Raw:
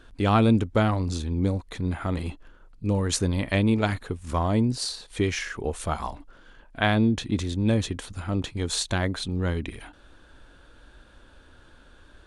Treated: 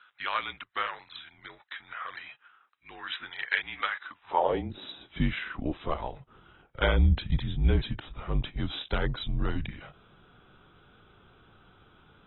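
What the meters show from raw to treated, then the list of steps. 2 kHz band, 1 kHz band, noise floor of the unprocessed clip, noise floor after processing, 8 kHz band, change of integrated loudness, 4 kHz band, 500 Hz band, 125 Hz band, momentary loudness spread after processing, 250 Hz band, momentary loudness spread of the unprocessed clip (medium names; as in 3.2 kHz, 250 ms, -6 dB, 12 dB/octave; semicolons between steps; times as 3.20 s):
-1.0 dB, -3.0 dB, -54 dBFS, -67 dBFS, under -40 dB, -5.0 dB, -4.5 dB, -6.0 dB, -6.0 dB, 17 LU, -11.5 dB, 11 LU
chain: high-pass sweep 1.7 kHz -> 170 Hz, 4.02–5.22 s; frequency shift -150 Hz; trim -4 dB; AAC 16 kbps 24 kHz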